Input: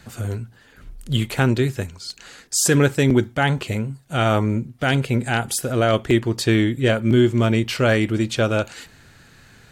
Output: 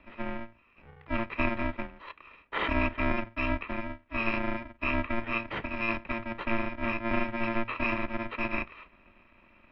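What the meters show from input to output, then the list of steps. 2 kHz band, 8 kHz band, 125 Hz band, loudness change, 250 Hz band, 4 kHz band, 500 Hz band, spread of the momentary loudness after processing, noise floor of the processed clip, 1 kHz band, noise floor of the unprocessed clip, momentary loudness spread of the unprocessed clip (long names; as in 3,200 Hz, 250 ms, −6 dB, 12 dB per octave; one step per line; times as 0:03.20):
−6.5 dB, below −40 dB, −20.0 dB, −12.0 dB, −13.0 dB, −16.5 dB, −15.0 dB, 10 LU, −62 dBFS, −6.5 dB, −51 dBFS, 12 LU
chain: samples in bit-reversed order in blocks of 128 samples
single-sideband voice off tune −230 Hz 200–2,800 Hz
hum removal 54.3 Hz, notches 3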